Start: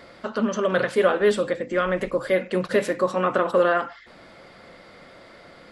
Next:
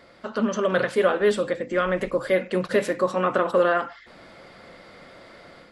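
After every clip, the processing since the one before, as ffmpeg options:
-af "dynaudnorm=f=200:g=3:m=6dB,volume=-5.5dB"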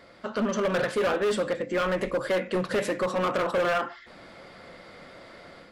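-af "flanger=delay=9.7:depth=2.7:regen=-81:speed=0.5:shape=sinusoidal,volume=25.5dB,asoftclip=hard,volume=-25.5dB,volume=4dB"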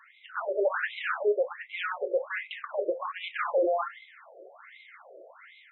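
-af "highpass=130,lowpass=4.8k,asubboost=boost=5:cutoff=250,afftfilt=real='re*between(b*sr/1024,480*pow(2900/480,0.5+0.5*sin(2*PI*1.3*pts/sr))/1.41,480*pow(2900/480,0.5+0.5*sin(2*PI*1.3*pts/sr))*1.41)':imag='im*between(b*sr/1024,480*pow(2900/480,0.5+0.5*sin(2*PI*1.3*pts/sr))/1.41,480*pow(2900/480,0.5+0.5*sin(2*PI*1.3*pts/sr))*1.41)':win_size=1024:overlap=0.75,volume=3.5dB"

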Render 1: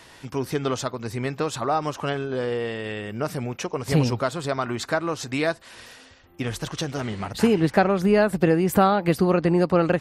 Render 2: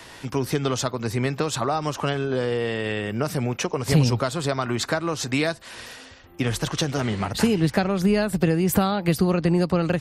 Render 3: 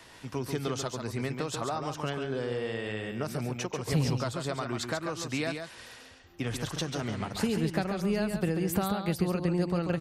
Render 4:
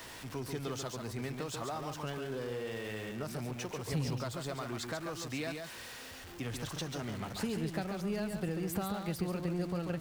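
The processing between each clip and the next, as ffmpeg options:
-filter_complex "[0:a]acrossover=split=170|3000[a][b][c];[b]acompressor=threshold=-27dB:ratio=4[d];[a][d][c]amix=inputs=3:normalize=0,volume=5dB"
-af "aecho=1:1:139:0.473,volume=-9dB"
-af "aeval=exprs='val(0)+0.5*0.0158*sgn(val(0))':c=same,volume=-8dB"

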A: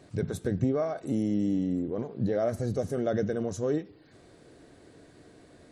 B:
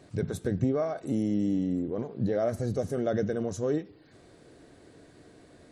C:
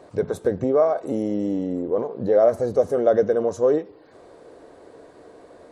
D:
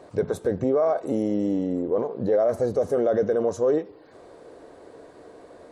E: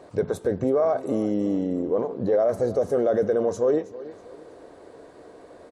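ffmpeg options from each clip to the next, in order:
-af anull
-af "equalizer=f=125:t=o:w=1:g=-5,equalizer=f=500:t=o:w=1:g=11,equalizer=f=1k:t=o:w=1:g=11"
-af "alimiter=limit=-14dB:level=0:latency=1:release=26"
-af "aecho=1:1:322|644|966:0.141|0.0523|0.0193"

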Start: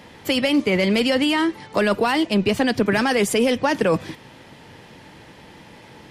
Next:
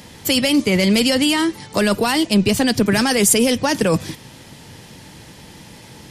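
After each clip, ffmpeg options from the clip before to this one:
-af "bass=f=250:g=7,treble=f=4k:g=14"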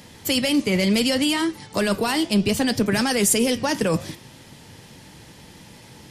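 -af "flanger=delay=6.9:depth=9.7:regen=-81:speed=0.68:shape=triangular"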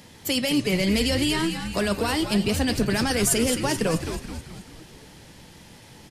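-filter_complex "[0:a]asplit=7[a][b][c][d][e][f][g];[b]adelay=216,afreqshift=-120,volume=-8dB[h];[c]adelay=432,afreqshift=-240,volume=-13.5dB[i];[d]adelay=648,afreqshift=-360,volume=-19dB[j];[e]adelay=864,afreqshift=-480,volume=-24.5dB[k];[f]adelay=1080,afreqshift=-600,volume=-30.1dB[l];[g]adelay=1296,afreqshift=-720,volume=-35.6dB[m];[a][h][i][j][k][l][m]amix=inputs=7:normalize=0,volume=-3dB"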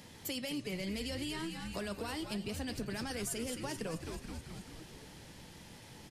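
-af "acompressor=threshold=-36dB:ratio=2.5,volume=-5.5dB"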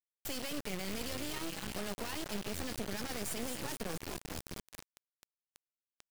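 -af "acrusher=bits=4:dc=4:mix=0:aa=0.000001,volume=2.5dB"

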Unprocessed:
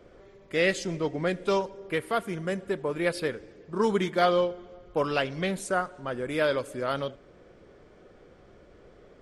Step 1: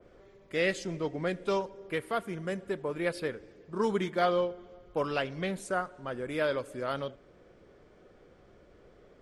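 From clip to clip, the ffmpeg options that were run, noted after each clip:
-af "adynamicequalizer=threshold=0.00794:dfrequency=2800:dqfactor=0.7:tfrequency=2800:tqfactor=0.7:attack=5:release=100:ratio=0.375:range=2.5:mode=cutabove:tftype=highshelf,volume=-4dB"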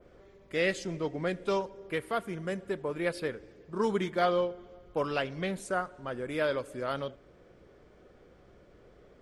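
-af "aeval=exprs='val(0)+0.000501*(sin(2*PI*60*n/s)+sin(2*PI*2*60*n/s)/2+sin(2*PI*3*60*n/s)/3+sin(2*PI*4*60*n/s)/4+sin(2*PI*5*60*n/s)/5)':c=same"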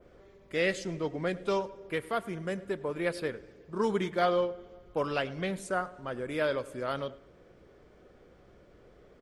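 -filter_complex "[0:a]asplit=2[a][b];[b]adelay=104,lowpass=f=4.2k:p=1,volume=-20.5dB,asplit=2[c][d];[d]adelay=104,lowpass=f=4.2k:p=1,volume=0.39,asplit=2[e][f];[f]adelay=104,lowpass=f=4.2k:p=1,volume=0.39[g];[a][c][e][g]amix=inputs=4:normalize=0"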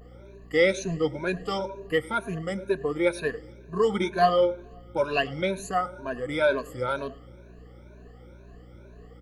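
-af "afftfilt=real='re*pow(10,22/40*sin(2*PI*(1.5*log(max(b,1)*sr/1024/100)/log(2)-(2.1)*(pts-256)/sr)))':imag='im*pow(10,22/40*sin(2*PI*(1.5*log(max(b,1)*sr/1024/100)/log(2)-(2.1)*(pts-256)/sr)))':win_size=1024:overlap=0.75,aeval=exprs='val(0)+0.00355*(sin(2*PI*60*n/s)+sin(2*PI*2*60*n/s)/2+sin(2*PI*3*60*n/s)/3+sin(2*PI*4*60*n/s)/4+sin(2*PI*5*60*n/s)/5)':c=same"

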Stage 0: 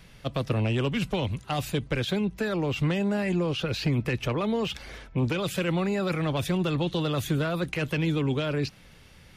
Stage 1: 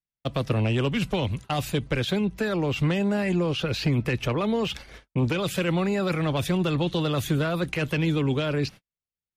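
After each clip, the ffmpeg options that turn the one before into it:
-af "agate=range=-51dB:threshold=-40dB:ratio=16:detection=peak,volume=2dB"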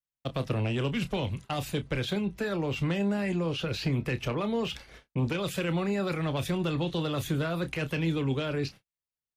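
-filter_complex "[0:a]asplit=2[a][b];[b]adelay=30,volume=-11.5dB[c];[a][c]amix=inputs=2:normalize=0,volume=-5dB"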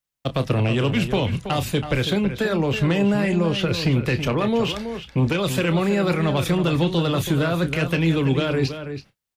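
-filter_complex "[0:a]asplit=2[a][b];[b]adelay=326.5,volume=-9dB,highshelf=f=4k:g=-7.35[c];[a][c]amix=inputs=2:normalize=0,volume=8.5dB"

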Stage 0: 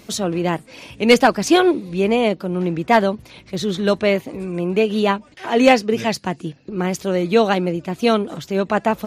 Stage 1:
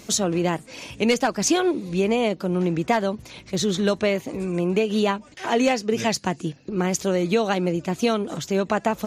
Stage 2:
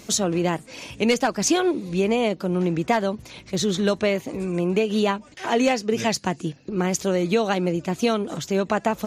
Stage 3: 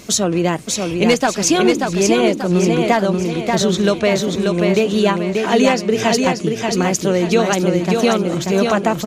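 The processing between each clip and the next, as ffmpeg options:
-af "equalizer=f=6.7k:t=o:w=0.62:g=7.5,acompressor=threshold=-17dB:ratio=6"
-af anull
-filter_complex "[0:a]bandreject=f=830:w=21,asplit=2[a][b];[b]aecho=0:1:585|1170|1755|2340|2925:0.631|0.271|0.117|0.0502|0.0216[c];[a][c]amix=inputs=2:normalize=0,volume=5.5dB"

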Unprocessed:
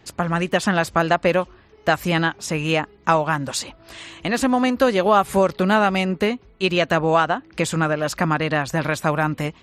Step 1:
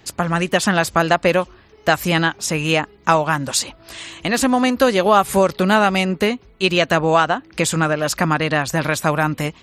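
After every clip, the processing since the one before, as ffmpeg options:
-af "highshelf=f=4.1k:g=7,volume=2dB"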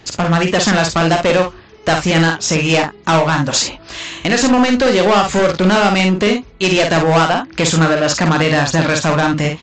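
-af "aresample=16000,asoftclip=type=hard:threshold=-16dB,aresample=44100,aecho=1:1:49|68:0.562|0.168,volume=6dB"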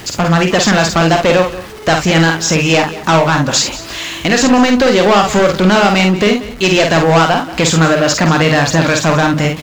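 -af "aeval=exprs='val(0)+0.5*0.0299*sgn(val(0))':c=same,aecho=1:1:184:0.158,volume=2dB"

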